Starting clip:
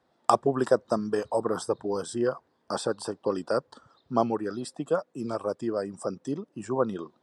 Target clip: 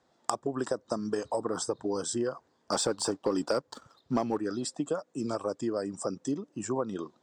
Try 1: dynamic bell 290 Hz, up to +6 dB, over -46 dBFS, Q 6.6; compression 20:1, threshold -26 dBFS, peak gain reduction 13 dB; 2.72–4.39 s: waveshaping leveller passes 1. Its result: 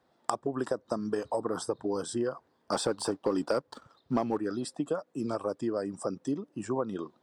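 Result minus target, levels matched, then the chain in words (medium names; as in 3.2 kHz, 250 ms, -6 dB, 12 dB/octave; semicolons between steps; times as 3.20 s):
8 kHz band -5.5 dB
dynamic bell 290 Hz, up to +6 dB, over -46 dBFS, Q 6.6; resonant low-pass 7.1 kHz, resonance Q 3.1; compression 20:1, threshold -26 dBFS, peak gain reduction 13 dB; 2.72–4.39 s: waveshaping leveller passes 1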